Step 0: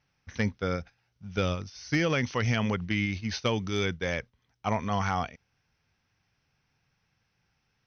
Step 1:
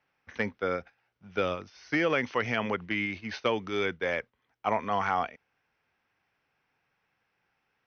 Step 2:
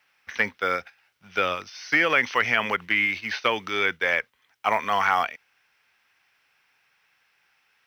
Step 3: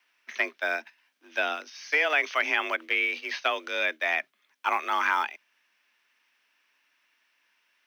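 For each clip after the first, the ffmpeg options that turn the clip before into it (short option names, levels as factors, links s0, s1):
-filter_complex "[0:a]acrossover=split=270 3100:gain=0.158 1 0.158[s0][s1][s2];[s0][s1][s2]amix=inputs=3:normalize=0,volume=1.33"
-filter_complex "[0:a]tiltshelf=f=970:g=-9.5,acrusher=bits=7:mode=log:mix=0:aa=0.000001,acrossover=split=2700[s0][s1];[s1]acompressor=threshold=0.00794:ratio=4:attack=1:release=60[s2];[s0][s2]amix=inputs=2:normalize=0,volume=2"
-af "afreqshift=150,volume=0.668"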